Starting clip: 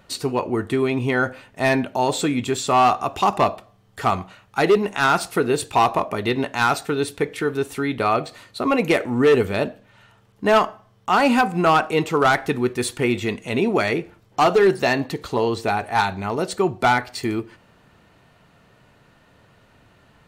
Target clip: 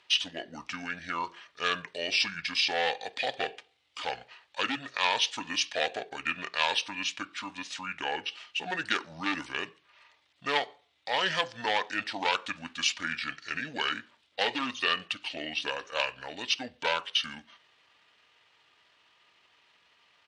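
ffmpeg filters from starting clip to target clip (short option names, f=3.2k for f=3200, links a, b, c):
-af "asetrate=29433,aresample=44100,atempo=1.49831,bandpass=f=3.4k:t=q:w=2.5:csg=0,volume=8dB"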